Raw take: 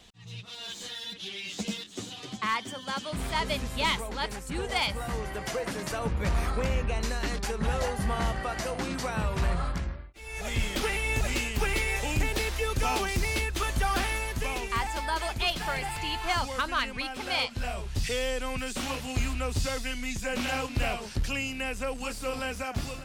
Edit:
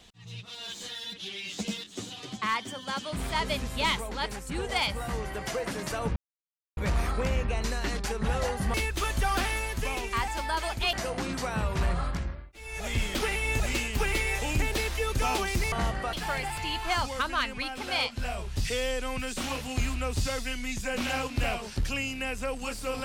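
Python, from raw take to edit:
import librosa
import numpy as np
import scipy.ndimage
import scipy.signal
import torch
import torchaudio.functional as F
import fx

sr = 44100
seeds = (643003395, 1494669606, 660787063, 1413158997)

y = fx.edit(x, sr, fx.insert_silence(at_s=6.16, length_s=0.61),
    fx.swap(start_s=8.13, length_s=0.41, other_s=13.33, other_length_s=2.19), tone=tone)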